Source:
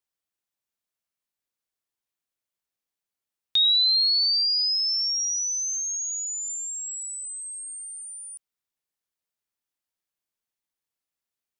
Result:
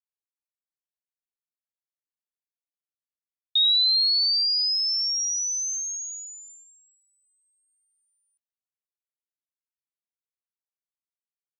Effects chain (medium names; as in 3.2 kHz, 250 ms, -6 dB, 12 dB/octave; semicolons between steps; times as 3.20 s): gate -30 dBFS, range -35 dB